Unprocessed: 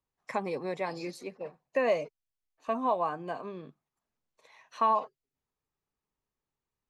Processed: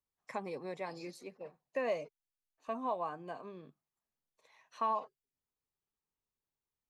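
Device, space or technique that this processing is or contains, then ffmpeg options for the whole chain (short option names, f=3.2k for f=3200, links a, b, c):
exciter from parts: -filter_complex "[0:a]asplit=2[a][b];[b]highpass=f=2.1k:p=1,asoftclip=type=tanh:threshold=-34dB,highpass=f=4.7k:p=1,volume=-10dB[c];[a][c]amix=inputs=2:normalize=0,volume=-7.5dB"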